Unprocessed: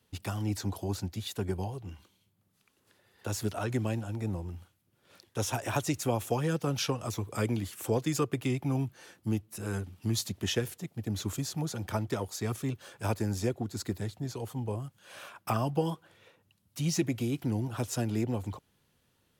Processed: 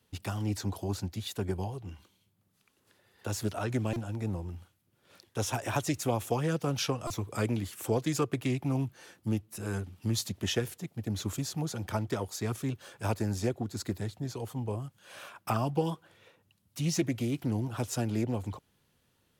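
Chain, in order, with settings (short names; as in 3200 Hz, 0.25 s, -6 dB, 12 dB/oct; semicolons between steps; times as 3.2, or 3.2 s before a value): stuck buffer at 3.93/7.07, samples 128, times 10; Doppler distortion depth 0.15 ms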